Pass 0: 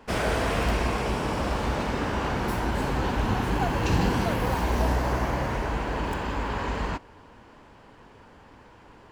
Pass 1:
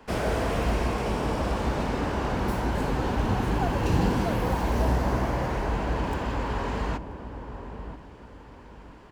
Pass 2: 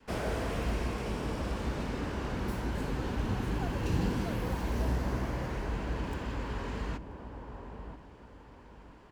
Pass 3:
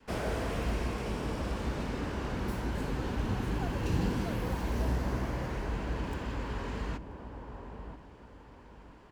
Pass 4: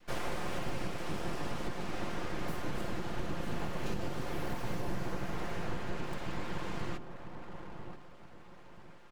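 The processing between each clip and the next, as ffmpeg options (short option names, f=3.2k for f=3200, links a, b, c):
-filter_complex "[0:a]acrossover=split=470|940[a][b][c];[c]asoftclip=type=tanh:threshold=-34.5dB[d];[a][b][d]amix=inputs=3:normalize=0,asplit=2[e][f];[f]adelay=983,lowpass=f=830:p=1,volume=-8.5dB,asplit=2[g][h];[h]adelay=983,lowpass=f=830:p=1,volume=0.35,asplit=2[i][j];[j]adelay=983,lowpass=f=830:p=1,volume=0.35,asplit=2[k][l];[l]adelay=983,lowpass=f=830:p=1,volume=0.35[m];[e][g][i][k][m]amix=inputs=5:normalize=0"
-af "adynamicequalizer=threshold=0.00891:dfrequency=780:dqfactor=1.2:tfrequency=780:tqfactor=1.2:attack=5:release=100:ratio=0.375:range=3:mode=cutabove:tftype=bell,volume=-6dB"
-af anull
-af "aeval=exprs='abs(val(0))':c=same,aecho=1:1:5.7:0.35,alimiter=limit=-23.5dB:level=0:latency=1:release=295"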